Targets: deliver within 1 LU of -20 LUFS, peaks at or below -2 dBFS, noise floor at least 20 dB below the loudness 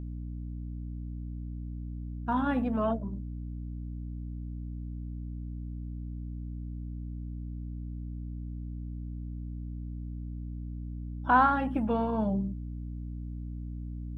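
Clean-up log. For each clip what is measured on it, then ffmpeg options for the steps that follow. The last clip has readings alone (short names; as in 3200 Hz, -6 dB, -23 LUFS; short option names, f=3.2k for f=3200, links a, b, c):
hum 60 Hz; harmonics up to 300 Hz; hum level -35 dBFS; loudness -34.5 LUFS; peak -11.0 dBFS; loudness target -20.0 LUFS
-> -af "bandreject=f=60:t=h:w=4,bandreject=f=120:t=h:w=4,bandreject=f=180:t=h:w=4,bandreject=f=240:t=h:w=4,bandreject=f=300:t=h:w=4"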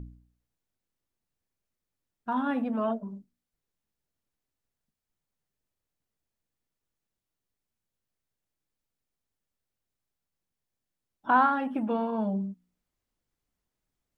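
hum none; loudness -28.5 LUFS; peak -11.5 dBFS; loudness target -20.0 LUFS
-> -af "volume=8.5dB"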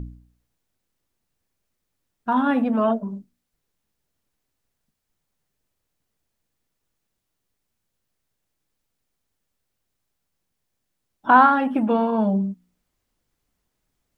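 loudness -20.0 LUFS; peak -3.0 dBFS; noise floor -79 dBFS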